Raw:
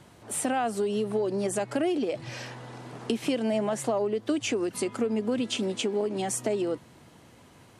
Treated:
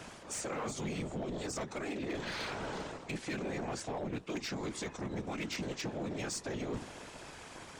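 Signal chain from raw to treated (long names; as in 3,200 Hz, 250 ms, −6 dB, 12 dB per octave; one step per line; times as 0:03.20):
ceiling on every frequency bin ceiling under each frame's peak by 13 dB
mains-hum notches 50/100/150/200/250/300/350/400 Hz
reversed playback
downward compressor 6 to 1, threshold −40 dBFS, peak gain reduction 17 dB
reversed playback
formants moved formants −4 semitones
random phases in short frames
in parallel at −4.5 dB: wave folding −39 dBFS
on the sum: level +1 dB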